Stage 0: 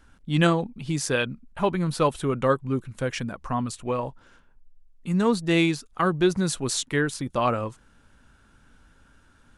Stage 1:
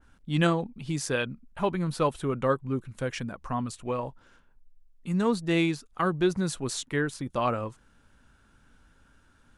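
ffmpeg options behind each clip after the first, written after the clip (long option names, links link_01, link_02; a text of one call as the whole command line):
ffmpeg -i in.wav -af "adynamicequalizer=threshold=0.01:dfrequency=2400:dqfactor=0.7:tfrequency=2400:tqfactor=0.7:attack=5:release=100:ratio=0.375:range=2:mode=cutabove:tftype=highshelf,volume=-3.5dB" out.wav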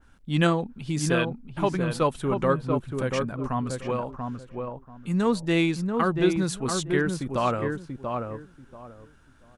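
ffmpeg -i in.wav -filter_complex "[0:a]asplit=2[link_01][link_02];[link_02]adelay=686,lowpass=frequency=1300:poles=1,volume=-4dB,asplit=2[link_03][link_04];[link_04]adelay=686,lowpass=frequency=1300:poles=1,volume=0.22,asplit=2[link_05][link_06];[link_06]adelay=686,lowpass=frequency=1300:poles=1,volume=0.22[link_07];[link_01][link_03][link_05][link_07]amix=inputs=4:normalize=0,volume=2dB" out.wav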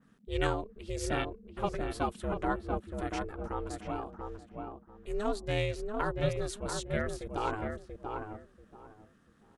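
ffmpeg -i in.wav -af "aeval=exprs='val(0)*sin(2*PI*210*n/s)':channel_layout=same,volume=-5.5dB" out.wav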